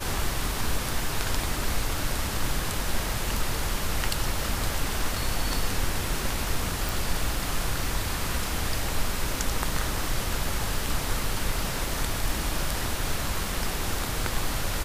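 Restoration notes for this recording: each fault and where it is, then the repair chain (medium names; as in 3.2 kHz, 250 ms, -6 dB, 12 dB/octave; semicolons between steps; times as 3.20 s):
6.89 s: pop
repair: de-click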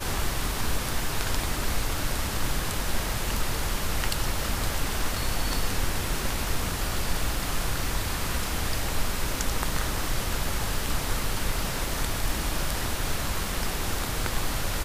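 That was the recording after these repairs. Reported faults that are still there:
nothing left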